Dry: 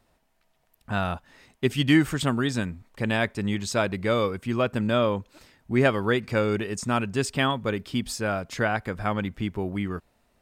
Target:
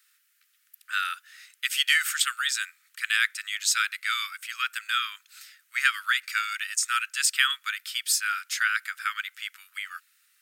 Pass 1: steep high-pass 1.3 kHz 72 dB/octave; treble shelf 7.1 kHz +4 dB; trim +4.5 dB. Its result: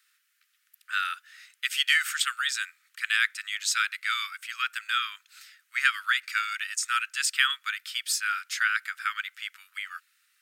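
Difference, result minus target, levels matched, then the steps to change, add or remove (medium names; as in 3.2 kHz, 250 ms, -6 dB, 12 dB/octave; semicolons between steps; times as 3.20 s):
8 kHz band -3.0 dB
change: treble shelf 7.1 kHz +11.5 dB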